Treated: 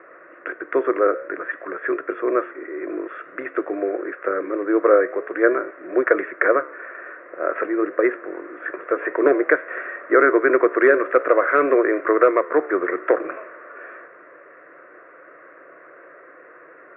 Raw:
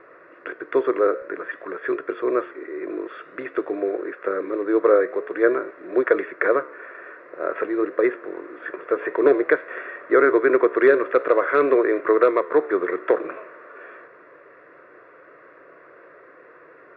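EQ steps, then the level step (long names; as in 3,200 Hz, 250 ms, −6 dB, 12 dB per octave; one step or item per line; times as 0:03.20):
loudspeaker in its box 220–2,300 Hz, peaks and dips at 230 Hz −5 dB, 430 Hz −6 dB, 960 Hz −5 dB
+4.5 dB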